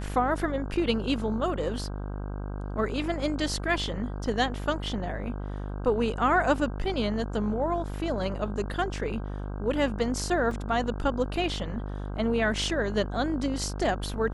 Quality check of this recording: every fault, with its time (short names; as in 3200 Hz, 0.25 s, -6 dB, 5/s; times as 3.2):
buzz 50 Hz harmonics 32 -34 dBFS
10.51 gap 2.4 ms